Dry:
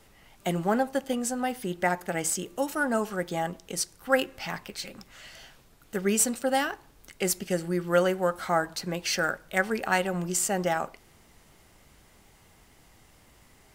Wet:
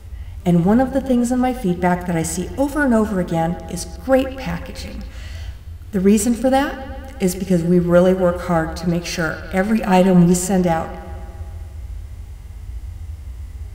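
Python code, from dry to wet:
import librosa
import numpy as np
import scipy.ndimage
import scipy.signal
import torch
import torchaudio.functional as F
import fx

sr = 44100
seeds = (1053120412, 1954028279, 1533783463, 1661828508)

p1 = fx.dmg_noise_band(x, sr, seeds[0], low_hz=44.0, high_hz=91.0, level_db=-51.0)
p2 = fx.comb(p1, sr, ms=5.7, depth=0.77, at=(9.68, 10.37))
p3 = p2 + fx.echo_bbd(p2, sr, ms=125, stages=4096, feedback_pct=69, wet_db=-17, dry=0)
p4 = fx.hpss(p3, sr, part='harmonic', gain_db=9)
p5 = 10.0 ** (-18.5 / 20.0) * np.tanh(p4 / 10.0 ** (-18.5 / 20.0))
p6 = p4 + (p5 * 10.0 ** (-10.0 / 20.0))
p7 = fx.low_shelf(p6, sr, hz=260.0, db=11.5)
y = p7 * 10.0 ** (-2.5 / 20.0)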